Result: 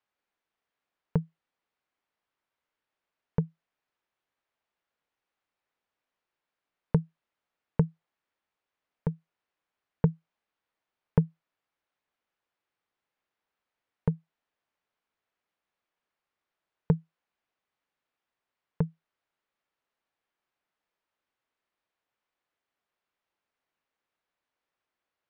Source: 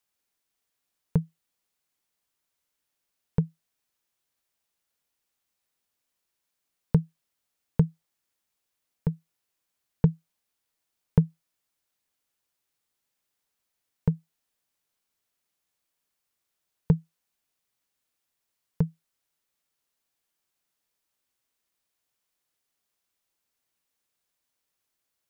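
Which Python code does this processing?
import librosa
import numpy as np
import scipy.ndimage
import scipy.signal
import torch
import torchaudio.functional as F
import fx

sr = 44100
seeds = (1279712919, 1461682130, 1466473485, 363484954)

y = scipy.signal.sosfilt(scipy.signal.bessel(2, 1800.0, 'lowpass', norm='mag', fs=sr, output='sos'), x)
y = fx.low_shelf(y, sr, hz=300.0, db=-9.0)
y = y * librosa.db_to_amplitude(4.0)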